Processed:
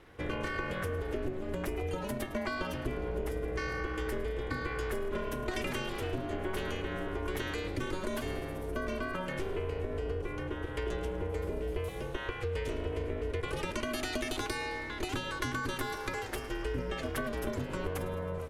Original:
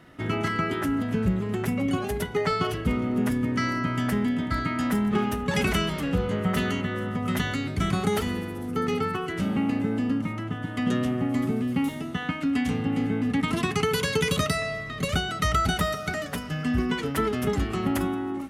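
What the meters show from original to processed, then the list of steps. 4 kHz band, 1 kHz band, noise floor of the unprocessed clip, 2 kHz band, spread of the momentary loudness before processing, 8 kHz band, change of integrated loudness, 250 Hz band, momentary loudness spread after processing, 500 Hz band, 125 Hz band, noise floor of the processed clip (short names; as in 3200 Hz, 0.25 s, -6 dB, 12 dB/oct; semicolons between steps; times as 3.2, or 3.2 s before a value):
-9.5 dB, -9.5 dB, -35 dBFS, -7.0 dB, 5 LU, -9.0 dB, -9.5 dB, -14.0 dB, 2 LU, -5.0 dB, -10.0 dB, -40 dBFS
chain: ring modulator 190 Hz; compressor, threshold -29 dBFS, peak gain reduction 9 dB; frequency-shifting echo 0.107 s, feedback 60%, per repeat +70 Hz, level -17 dB; gain -1.5 dB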